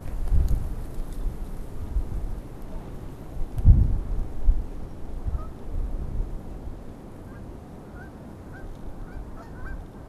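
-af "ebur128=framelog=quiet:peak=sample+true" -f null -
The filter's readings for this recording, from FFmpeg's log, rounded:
Integrated loudness:
  I:         -30.7 LUFS
  Threshold: -41.6 LUFS
Loudness range:
  LRA:        13.5 LU
  Threshold: -51.0 LUFS
  LRA low:   -41.4 LUFS
  LRA high:  -27.9 LUFS
Sample peak:
  Peak:       -3.1 dBFS
True peak:
  Peak:       -3.1 dBFS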